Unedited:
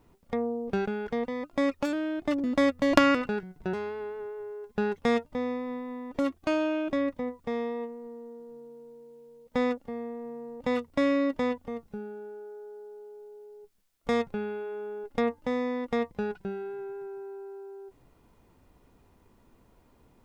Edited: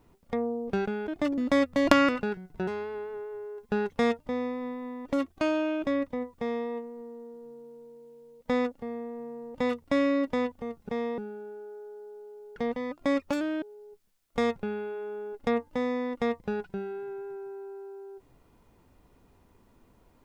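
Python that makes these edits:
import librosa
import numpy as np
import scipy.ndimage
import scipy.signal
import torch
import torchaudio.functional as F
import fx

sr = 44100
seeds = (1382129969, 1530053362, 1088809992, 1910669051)

y = fx.edit(x, sr, fx.move(start_s=1.08, length_s=1.06, to_s=13.33),
    fx.duplicate(start_s=7.45, length_s=0.29, to_s=11.95), tone=tone)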